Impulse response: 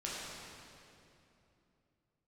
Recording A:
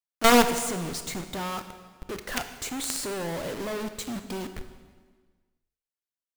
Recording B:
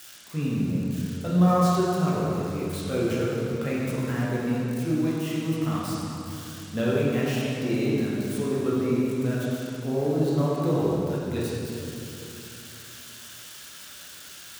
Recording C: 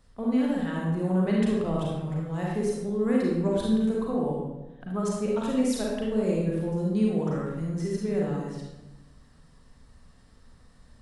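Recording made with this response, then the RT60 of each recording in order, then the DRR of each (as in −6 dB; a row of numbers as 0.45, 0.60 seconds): B; 1.5, 2.9, 1.1 seconds; 8.5, −7.0, −4.0 decibels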